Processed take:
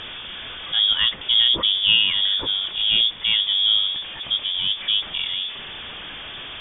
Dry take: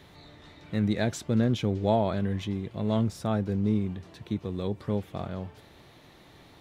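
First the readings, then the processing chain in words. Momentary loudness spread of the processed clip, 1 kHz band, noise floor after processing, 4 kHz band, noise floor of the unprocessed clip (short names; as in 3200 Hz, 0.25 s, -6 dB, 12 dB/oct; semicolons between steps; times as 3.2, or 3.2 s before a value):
17 LU, -3.0 dB, -36 dBFS, +30.0 dB, -54 dBFS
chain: zero-crossing step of -36.5 dBFS; inverted band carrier 3500 Hz; air absorption 87 m; gain +7.5 dB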